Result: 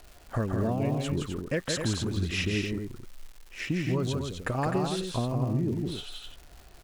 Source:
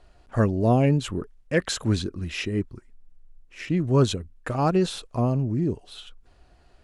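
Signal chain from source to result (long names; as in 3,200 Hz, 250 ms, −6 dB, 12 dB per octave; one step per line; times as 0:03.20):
downward compressor 6 to 1, threshold −28 dBFS, peak gain reduction 13.5 dB
loudspeakers that aren't time-aligned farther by 57 metres −4 dB, 88 metres −7 dB
surface crackle 380 per second −43 dBFS
level +1.5 dB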